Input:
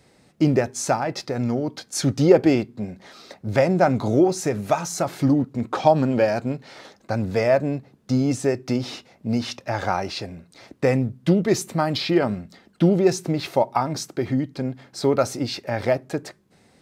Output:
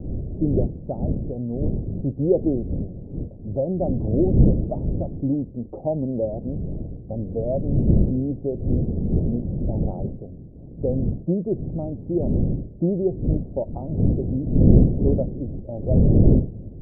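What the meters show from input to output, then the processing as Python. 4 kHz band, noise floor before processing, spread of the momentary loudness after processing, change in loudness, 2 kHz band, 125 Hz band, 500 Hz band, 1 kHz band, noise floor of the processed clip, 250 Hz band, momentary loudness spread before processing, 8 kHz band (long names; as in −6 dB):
below −40 dB, −58 dBFS, 14 LU, −1.0 dB, below −40 dB, +5.0 dB, −4.5 dB, −15.5 dB, −39 dBFS, −0.5 dB, 12 LU, below −40 dB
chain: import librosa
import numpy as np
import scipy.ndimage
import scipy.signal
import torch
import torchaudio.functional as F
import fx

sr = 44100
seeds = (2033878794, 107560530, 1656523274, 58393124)

y = fx.dmg_wind(x, sr, seeds[0], corner_hz=170.0, level_db=-18.0)
y = scipy.signal.sosfilt(scipy.signal.butter(6, 620.0, 'lowpass', fs=sr, output='sos'), y)
y = F.gain(torch.from_numpy(y), -4.5).numpy()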